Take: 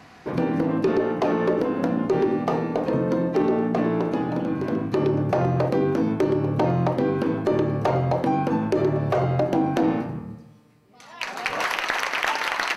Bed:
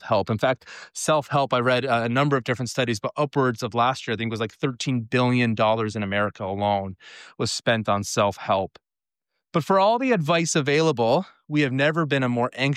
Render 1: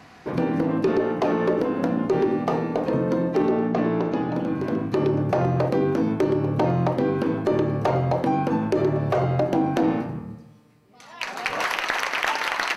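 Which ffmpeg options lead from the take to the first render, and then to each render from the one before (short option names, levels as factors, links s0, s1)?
-filter_complex "[0:a]asettb=1/sr,asplit=3[s0][s1][s2];[s0]atrim=end=3.514[s3];[s1]atrim=start=3.51:end=4.36,asetpts=PTS-STARTPTS,afade=t=in:d=0.004:c=qsin,afade=t=out:st=0.846:d=0.004:c=qsin,lowpass=f=6800:w=0.5412,lowpass=f=6800:w=1.3066[s4];[s2]atrim=start=4.356[s5];[s3][s4]acrossfade=d=0.004:c1=hsin:c2=qsin[s6];[s6][s5]acrossfade=d=0.004:c1=qsin:c2=hsin"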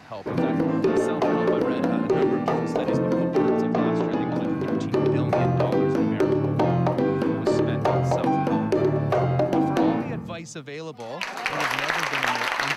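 -filter_complex "[1:a]volume=0.178[s0];[0:a][s0]amix=inputs=2:normalize=0"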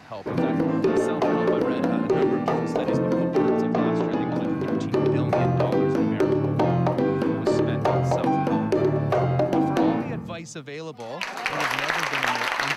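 -af anull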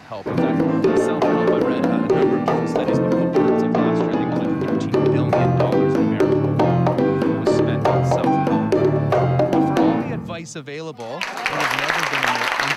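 -af "volume=1.68"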